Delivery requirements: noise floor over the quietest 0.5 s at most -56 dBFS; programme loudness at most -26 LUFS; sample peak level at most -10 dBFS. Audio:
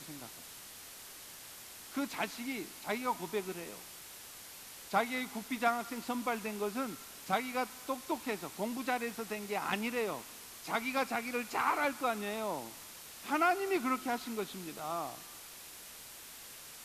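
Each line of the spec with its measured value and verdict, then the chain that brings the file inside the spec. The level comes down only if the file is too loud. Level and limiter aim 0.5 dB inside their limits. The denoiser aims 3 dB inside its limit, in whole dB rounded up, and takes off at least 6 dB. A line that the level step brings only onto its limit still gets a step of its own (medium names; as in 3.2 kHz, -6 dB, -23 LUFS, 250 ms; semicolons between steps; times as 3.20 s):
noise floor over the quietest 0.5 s -50 dBFS: fail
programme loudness -36.0 LUFS: pass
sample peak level -16.5 dBFS: pass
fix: noise reduction 9 dB, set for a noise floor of -50 dBFS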